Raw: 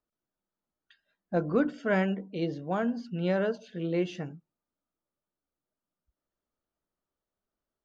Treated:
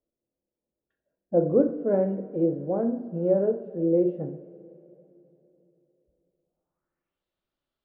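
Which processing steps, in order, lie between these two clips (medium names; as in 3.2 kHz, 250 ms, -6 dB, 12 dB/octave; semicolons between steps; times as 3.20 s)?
two-slope reverb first 0.56 s, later 3.6 s, from -18 dB, DRR 4.5 dB; low-pass sweep 500 Hz -> 3.6 kHz, 6.42–7.24 s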